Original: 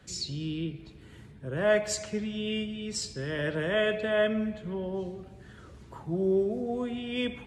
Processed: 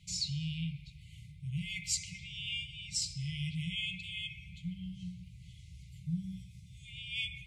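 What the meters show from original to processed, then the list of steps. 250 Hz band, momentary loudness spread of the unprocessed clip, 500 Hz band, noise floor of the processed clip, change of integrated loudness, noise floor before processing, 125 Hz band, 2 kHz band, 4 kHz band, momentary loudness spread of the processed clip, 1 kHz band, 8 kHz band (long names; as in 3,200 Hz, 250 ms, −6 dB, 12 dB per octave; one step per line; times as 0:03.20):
−10.5 dB, 18 LU, below −40 dB, −54 dBFS, −7.5 dB, −51 dBFS, −1.0 dB, −7.5 dB, 0.0 dB, 18 LU, below −40 dB, 0.0 dB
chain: brick-wall band-stop 190–2,000 Hz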